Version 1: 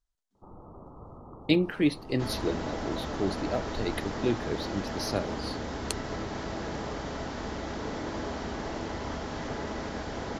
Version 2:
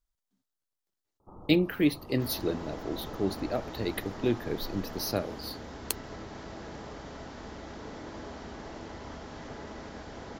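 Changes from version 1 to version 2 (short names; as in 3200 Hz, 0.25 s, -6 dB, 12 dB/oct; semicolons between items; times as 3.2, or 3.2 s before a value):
speech: remove LPF 9800 Hz 24 dB/oct; first sound: entry +0.85 s; second sound -7.5 dB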